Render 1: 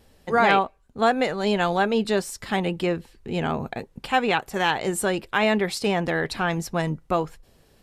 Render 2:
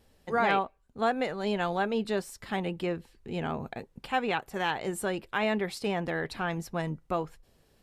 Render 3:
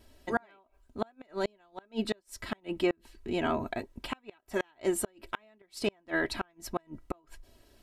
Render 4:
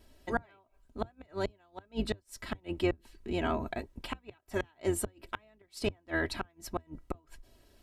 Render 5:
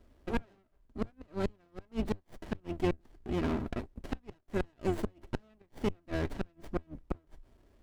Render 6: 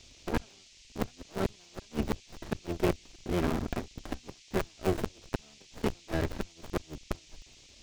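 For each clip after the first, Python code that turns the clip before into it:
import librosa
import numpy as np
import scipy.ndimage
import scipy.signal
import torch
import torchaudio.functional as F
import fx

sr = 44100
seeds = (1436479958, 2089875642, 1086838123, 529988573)

y1 = fx.dynamic_eq(x, sr, hz=6600.0, q=0.71, threshold_db=-44.0, ratio=4.0, max_db=-4)
y1 = y1 * 10.0 ** (-7.0 / 20.0)
y2 = y1 + 0.69 * np.pad(y1, (int(3.1 * sr / 1000.0), 0))[:len(y1)]
y2 = fx.gate_flip(y2, sr, shuts_db=-19.0, range_db=-37)
y2 = y2 * 10.0 ** (2.5 / 20.0)
y3 = fx.octave_divider(y2, sr, octaves=2, level_db=-3.0)
y3 = y3 * 10.0 ** (-2.0 / 20.0)
y4 = fx.running_max(y3, sr, window=33)
y5 = fx.cycle_switch(y4, sr, every=3, mode='muted')
y5 = fx.dmg_noise_band(y5, sr, seeds[0], low_hz=2200.0, high_hz=6900.0, level_db=-61.0)
y5 = y5 * 10.0 ** (3.5 / 20.0)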